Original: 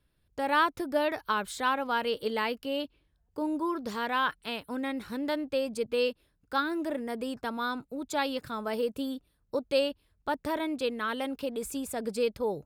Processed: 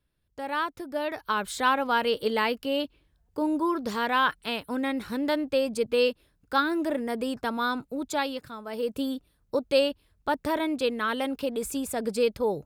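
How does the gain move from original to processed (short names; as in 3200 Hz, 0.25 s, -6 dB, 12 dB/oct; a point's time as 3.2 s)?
0.9 s -4 dB
1.56 s +4.5 dB
8.03 s +4.5 dB
8.64 s -6 dB
8.94 s +4 dB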